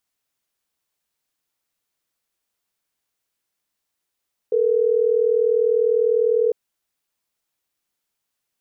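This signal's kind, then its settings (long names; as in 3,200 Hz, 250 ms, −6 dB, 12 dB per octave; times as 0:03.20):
call progress tone ringback tone, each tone −18 dBFS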